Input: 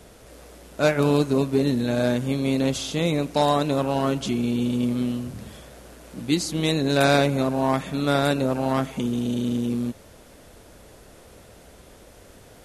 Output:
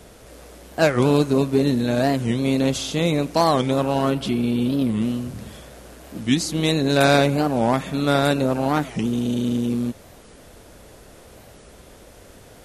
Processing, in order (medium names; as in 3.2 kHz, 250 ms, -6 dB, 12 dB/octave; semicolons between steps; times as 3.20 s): 4.10–5.02 s: peaking EQ 6.6 kHz -10 dB 0.41 oct; warped record 45 rpm, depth 250 cents; trim +2.5 dB